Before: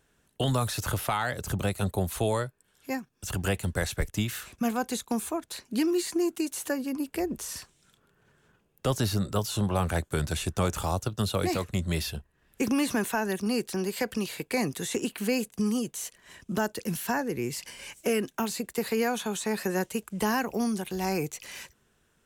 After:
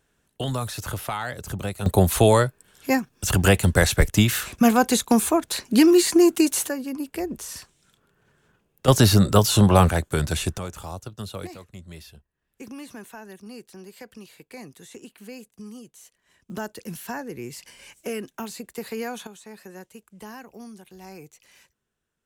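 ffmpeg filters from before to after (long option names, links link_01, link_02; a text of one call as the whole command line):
ffmpeg -i in.wav -af "asetnsamples=nb_out_samples=441:pad=0,asendcmd='1.86 volume volume 11dB;6.67 volume volume 1dB;8.88 volume volume 11.5dB;9.89 volume volume 5dB;10.58 volume volume -6.5dB;11.47 volume volume -13dB;16.5 volume volume -4dB;19.27 volume volume -13.5dB',volume=-1dB" out.wav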